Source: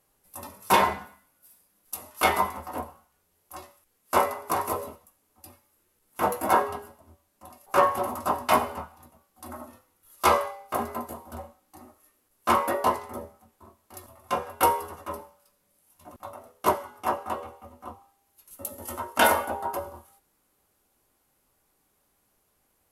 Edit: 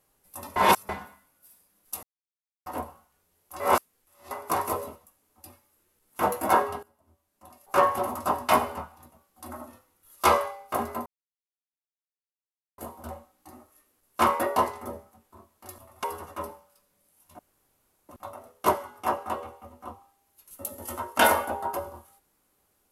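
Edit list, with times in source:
0.56–0.89 reverse
2.03–2.66 mute
3.6–4.31 reverse
6.83–7.89 fade in, from -18.5 dB
11.06 insert silence 1.72 s
14.32–14.74 cut
16.09 insert room tone 0.70 s

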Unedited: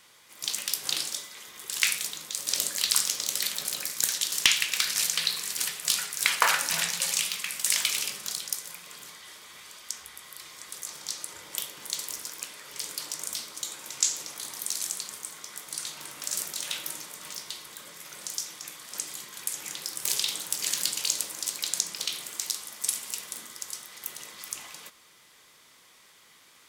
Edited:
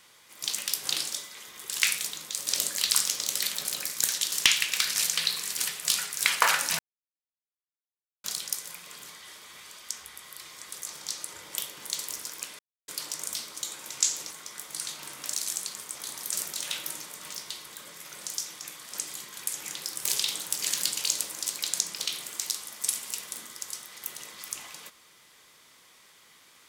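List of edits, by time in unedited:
6.79–8.24 mute
12.59–12.88 mute
14.31–14.68 swap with 15.29–16.32

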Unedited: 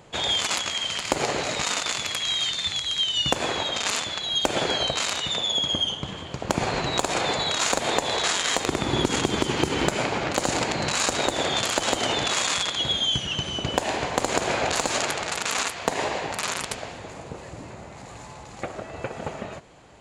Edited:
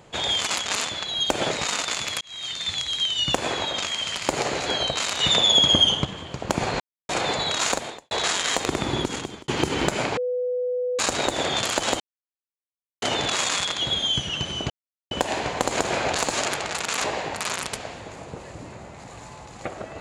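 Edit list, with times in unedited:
0.66–1.49 swap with 3.81–4.66
2.19–2.7 fade in
5.2–6.05 gain +7.5 dB
6.8–7.09 mute
7.72–8.11 fade out quadratic
8.84–9.48 fade out
10.17–10.99 bleep 497 Hz -22.5 dBFS
12 insert silence 1.02 s
13.68 insert silence 0.41 s
15.61–16.02 cut

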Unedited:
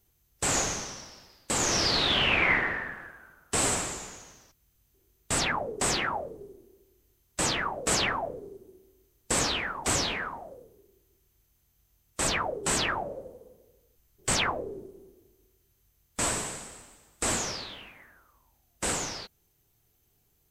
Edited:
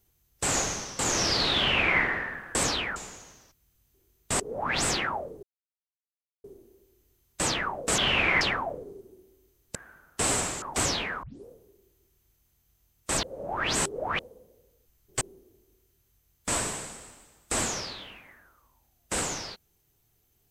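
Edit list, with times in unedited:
0.99–1.53 cut
2.12–2.55 copy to 7.97
3.09–3.96 swap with 9.31–9.72
5.34–5.87 reverse
6.43 insert silence 1.01 s
10.33 tape start 0.25 s
12.33–13.29 reverse
14.31–14.92 cut

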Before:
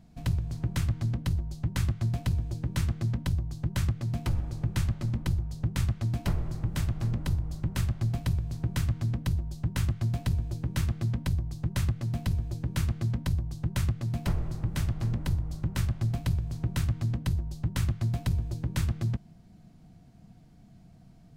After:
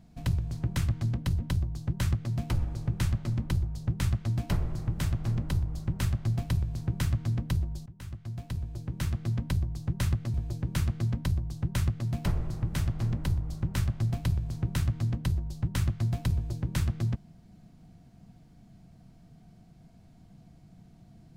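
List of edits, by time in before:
1.4–3.16 cut
9.62–11.26 fade in, from -20 dB
12.1–12.35 cut

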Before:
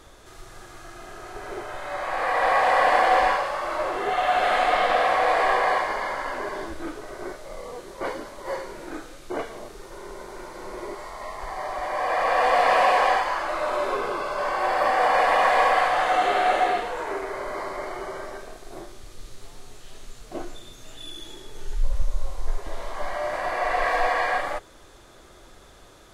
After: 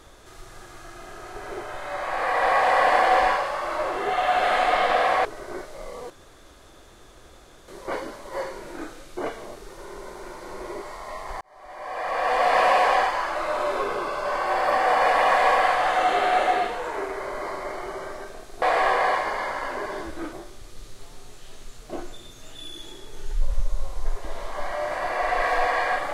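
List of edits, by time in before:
5.25–6.96 move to 18.75
7.81 insert room tone 1.58 s
11.54–12.72 fade in

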